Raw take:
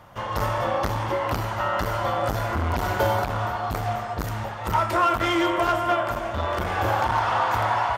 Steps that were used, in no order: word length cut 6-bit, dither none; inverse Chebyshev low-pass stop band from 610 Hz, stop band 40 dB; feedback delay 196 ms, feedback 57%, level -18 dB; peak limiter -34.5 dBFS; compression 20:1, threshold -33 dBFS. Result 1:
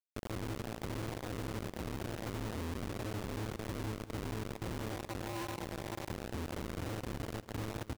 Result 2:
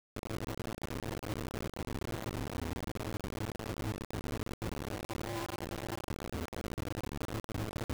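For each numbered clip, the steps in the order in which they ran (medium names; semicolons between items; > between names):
inverse Chebyshev low-pass > peak limiter > word length cut > feedback delay > compression; inverse Chebyshev low-pass > compression > peak limiter > feedback delay > word length cut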